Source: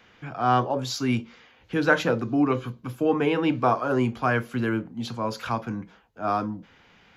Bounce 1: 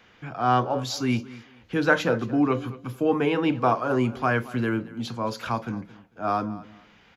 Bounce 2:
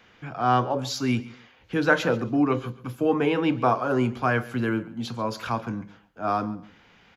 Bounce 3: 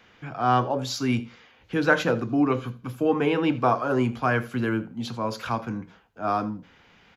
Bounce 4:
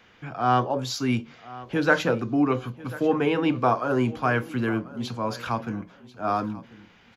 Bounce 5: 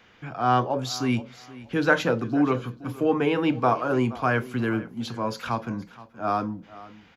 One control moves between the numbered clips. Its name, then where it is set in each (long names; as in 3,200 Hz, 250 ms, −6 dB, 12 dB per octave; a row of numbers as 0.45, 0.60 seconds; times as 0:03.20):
repeating echo, delay time: 224, 137, 81, 1,040, 474 milliseconds